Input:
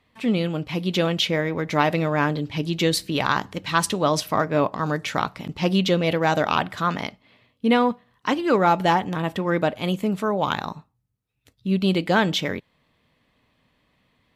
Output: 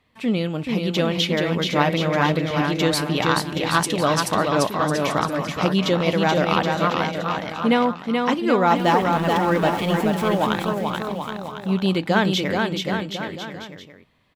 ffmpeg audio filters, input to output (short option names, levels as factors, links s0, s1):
-filter_complex "[0:a]asettb=1/sr,asplit=3[s0][s1][s2];[s0]atrim=end=8.764[s3];[s1]atrim=start=8.76:end=10.47,asetpts=PTS-STARTPTS,afade=t=in:d=0.004:c=qsin,afade=t=out:st=1.706:d=0.004:c=qsin,aeval=exprs='val(0)+0.5*0.0224*sgn(val(0))':c=same[s4];[s2]atrim=start=10.466[s5];[s3][s4]acrossfade=d=0.004:c1=hsin:c2=qsin[s6];[s6][s5]acrossfade=d=0.004:c1=qsin:c2=hsin,aecho=1:1:430|774|1049|1269|1445:0.631|0.398|0.251|0.158|0.1"